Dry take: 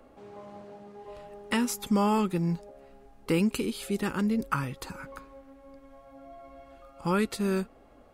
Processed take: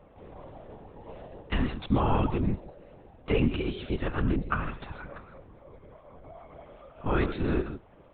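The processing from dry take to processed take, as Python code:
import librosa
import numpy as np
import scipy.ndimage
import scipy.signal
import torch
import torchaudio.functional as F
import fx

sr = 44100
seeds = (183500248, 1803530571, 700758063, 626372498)

y = fx.rev_gated(x, sr, seeds[0], gate_ms=170, shape='rising', drr_db=10.0)
y = fx.lpc_vocoder(y, sr, seeds[1], excitation='whisper', order=10)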